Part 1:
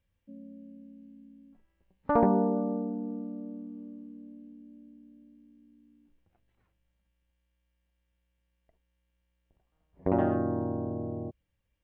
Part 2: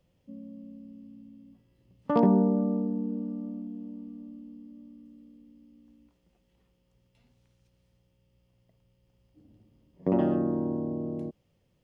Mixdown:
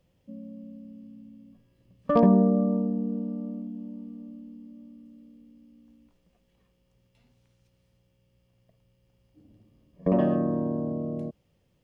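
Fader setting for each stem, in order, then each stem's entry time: -3.5 dB, +1.5 dB; 0.00 s, 0.00 s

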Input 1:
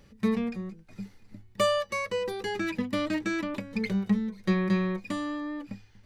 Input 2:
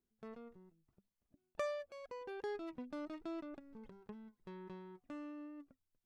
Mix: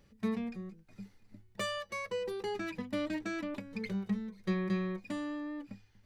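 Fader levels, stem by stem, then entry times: -8.0 dB, +1.5 dB; 0.00 s, 0.00 s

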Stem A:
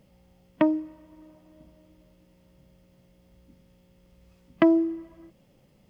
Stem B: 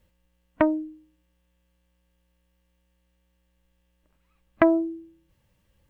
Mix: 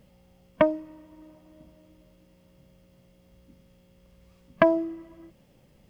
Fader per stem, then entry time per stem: +1.0 dB, -1.5 dB; 0.00 s, 0.00 s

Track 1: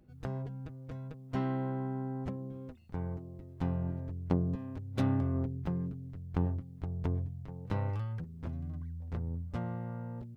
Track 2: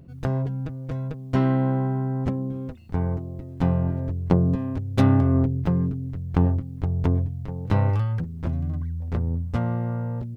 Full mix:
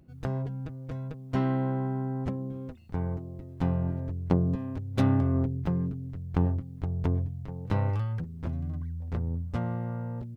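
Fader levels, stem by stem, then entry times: +0.5 dB, -12.5 dB; 0.00 s, 0.00 s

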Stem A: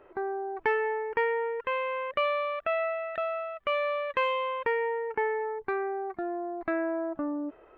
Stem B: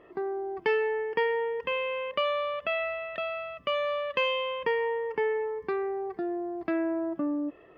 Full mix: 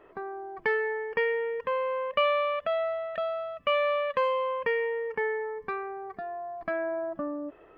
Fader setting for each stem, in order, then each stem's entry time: -1.5 dB, -4.5 dB; 0.00 s, 0.00 s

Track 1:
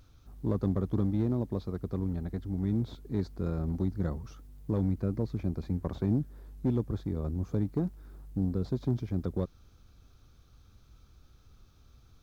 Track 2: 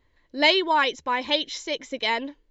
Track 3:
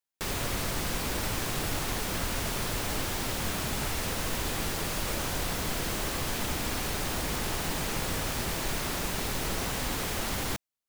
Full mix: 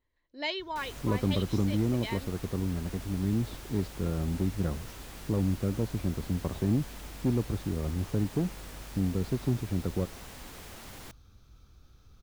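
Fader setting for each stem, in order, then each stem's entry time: +1.0 dB, -14.5 dB, -14.5 dB; 0.60 s, 0.00 s, 0.55 s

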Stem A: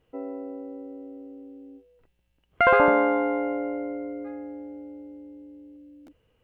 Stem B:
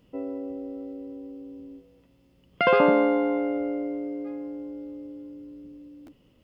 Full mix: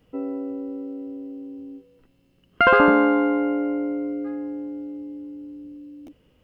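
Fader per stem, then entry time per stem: +3.0 dB, -2.0 dB; 0.00 s, 0.00 s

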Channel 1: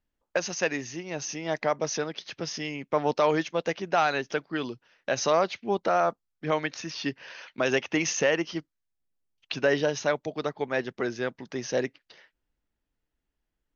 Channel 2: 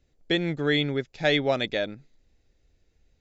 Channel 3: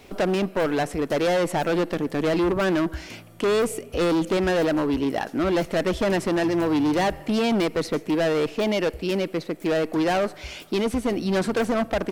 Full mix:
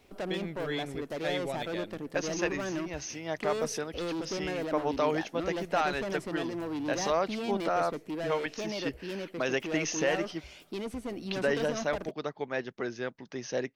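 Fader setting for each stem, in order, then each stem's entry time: -5.0 dB, -12.0 dB, -13.0 dB; 1.80 s, 0.00 s, 0.00 s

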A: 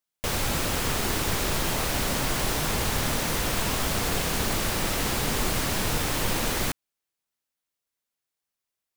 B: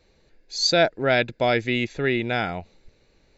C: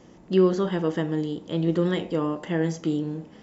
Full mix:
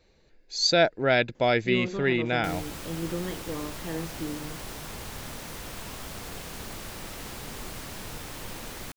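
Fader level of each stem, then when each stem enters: -12.5 dB, -2.0 dB, -9.5 dB; 2.20 s, 0.00 s, 1.35 s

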